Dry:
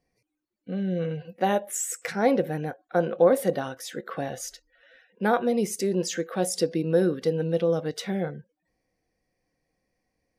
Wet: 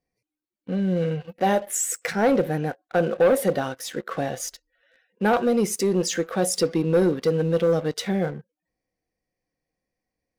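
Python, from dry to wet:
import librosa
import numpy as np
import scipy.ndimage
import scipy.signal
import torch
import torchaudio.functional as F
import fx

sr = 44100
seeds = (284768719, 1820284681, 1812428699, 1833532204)

y = fx.leveller(x, sr, passes=2)
y = y * 10.0 ** (-3.0 / 20.0)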